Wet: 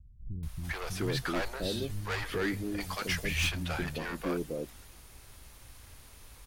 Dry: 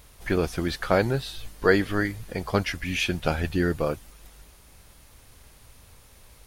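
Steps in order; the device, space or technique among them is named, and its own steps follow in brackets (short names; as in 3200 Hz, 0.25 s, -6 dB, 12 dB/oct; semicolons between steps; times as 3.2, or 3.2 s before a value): 2.37–3.06 tilt shelf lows -5.5 dB, about 1300 Hz; saturation between pre-emphasis and de-emphasis (high shelf 5200 Hz +6 dB; soft clip -26 dBFS, distortion -6 dB; high shelf 5200 Hz -6 dB); three bands offset in time lows, highs, mids 0.43/0.7 s, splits 170/560 Hz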